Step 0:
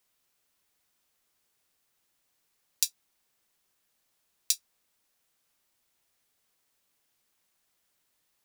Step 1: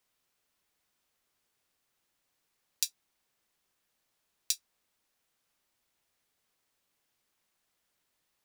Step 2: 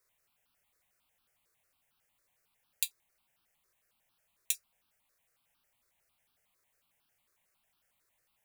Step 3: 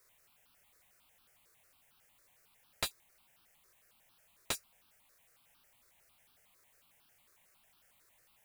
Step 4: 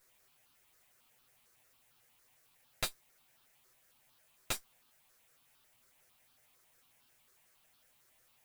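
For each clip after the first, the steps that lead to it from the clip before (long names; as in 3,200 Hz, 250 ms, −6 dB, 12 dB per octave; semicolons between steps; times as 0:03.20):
high-shelf EQ 5,700 Hz −5 dB; level −1 dB
step-sequenced phaser 11 Hz 820–2,000 Hz; level +4 dB
slew-rate limiting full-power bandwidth 63 Hz; level +8.5 dB
lower of the sound and its delayed copy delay 7.9 ms; level +1 dB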